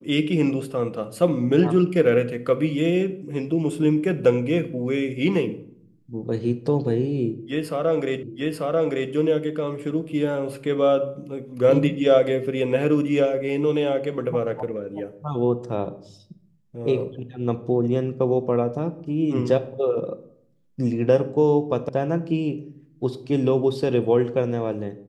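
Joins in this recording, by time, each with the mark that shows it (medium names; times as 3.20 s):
8.23 s: repeat of the last 0.89 s
21.89 s: sound stops dead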